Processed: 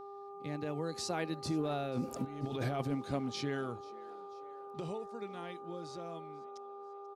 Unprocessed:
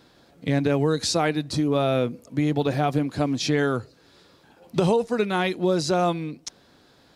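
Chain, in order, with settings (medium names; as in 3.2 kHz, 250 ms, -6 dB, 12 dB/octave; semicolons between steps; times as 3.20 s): Doppler pass-by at 2.22 s, 17 m/s, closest 1.7 m; compressor with a negative ratio -39 dBFS, ratio -1; mains buzz 400 Hz, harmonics 3, -51 dBFS -3 dB/octave; on a send: frequency-shifting echo 488 ms, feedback 53%, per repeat +78 Hz, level -21.5 dB; on the sum: trim +3 dB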